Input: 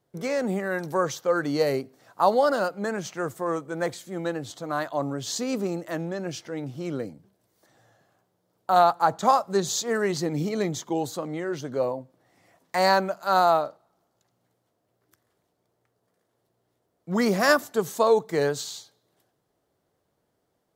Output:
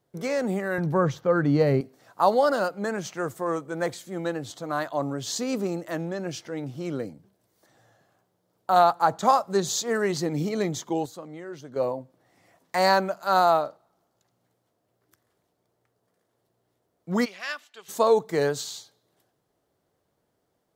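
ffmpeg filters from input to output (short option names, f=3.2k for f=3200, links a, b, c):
-filter_complex "[0:a]asettb=1/sr,asplit=3[a][b][c];[a]atrim=end=0.784[d];[b]atrim=start=0.78:end=1.81,asetpts=PTS-STARTPTS,afade=t=in:d=0.004:c=qsin,afade=t=out:st=1.026:d=0.004:c=qsin,bass=f=250:g=13,treble=f=4k:g=-13[e];[c]atrim=start=1.806[f];[d][e]acrossfade=d=0.004:c1=hsin:c2=qsin[g];[g][f]acrossfade=d=0.004:c1=qsin:c2=hsin,asplit=3[h][i][j];[h]afade=t=out:st=17.24:d=0.02[k];[i]bandpass=f=2.8k:t=q:w=2.8,afade=t=in:st=17.24:d=0.02,afade=t=out:st=17.88:d=0.02[l];[j]afade=t=in:st=17.88:d=0.02[m];[k][l][m]amix=inputs=3:normalize=0,asplit=3[n][o][p];[n]atrim=end=11.06,asetpts=PTS-STARTPTS,afade=t=out:st=10.93:d=0.13:c=log:silence=0.375837[q];[o]atrim=start=11.06:end=11.76,asetpts=PTS-STARTPTS,volume=-8.5dB[r];[p]atrim=start=11.76,asetpts=PTS-STARTPTS,afade=t=in:d=0.13:c=log:silence=0.375837[s];[q][r][s]concat=n=3:v=0:a=1"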